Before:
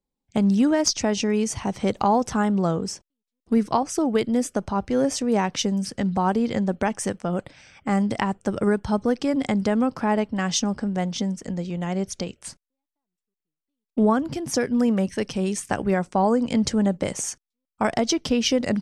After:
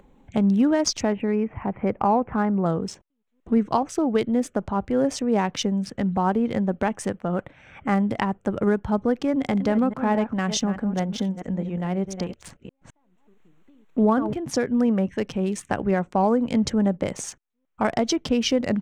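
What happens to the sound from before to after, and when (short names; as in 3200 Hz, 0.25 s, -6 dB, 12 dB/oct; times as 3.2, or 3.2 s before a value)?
1.12–2.66 Chebyshev low-pass 2400 Hz, order 4
7.29–7.95 dynamic EQ 1500 Hz, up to +5 dB, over -40 dBFS, Q 0.91
9.3–14.33 reverse delay 0.212 s, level -10 dB
whole clip: Wiener smoothing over 9 samples; upward compressor, threshold -30 dBFS; high shelf 6600 Hz -6 dB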